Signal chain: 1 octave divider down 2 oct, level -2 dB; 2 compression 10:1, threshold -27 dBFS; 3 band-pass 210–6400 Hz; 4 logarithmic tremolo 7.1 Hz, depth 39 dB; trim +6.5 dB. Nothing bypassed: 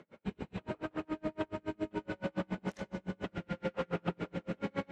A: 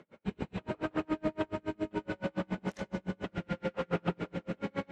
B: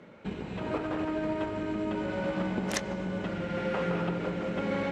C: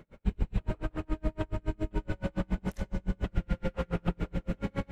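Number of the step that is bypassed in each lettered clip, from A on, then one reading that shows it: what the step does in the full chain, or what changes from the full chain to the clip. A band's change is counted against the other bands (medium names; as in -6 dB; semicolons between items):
2, mean gain reduction 2.5 dB; 4, momentary loudness spread change -1 LU; 3, 125 Hz band +8.5 dB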